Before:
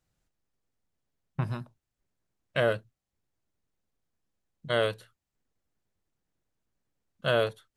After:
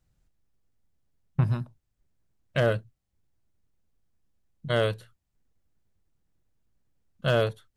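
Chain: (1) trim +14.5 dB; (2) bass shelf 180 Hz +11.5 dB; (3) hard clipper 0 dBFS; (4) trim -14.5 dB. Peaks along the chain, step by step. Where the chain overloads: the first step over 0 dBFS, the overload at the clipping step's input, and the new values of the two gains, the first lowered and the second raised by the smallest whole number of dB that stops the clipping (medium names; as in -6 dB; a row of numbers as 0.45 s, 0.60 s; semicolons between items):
+3.5 dBFS, +4.0 dBFS, 0.0 dBFS, -14.5 dBFS; step 1, 4.0 dB; step 1 +10.5 dB, step 4 -10.5 dB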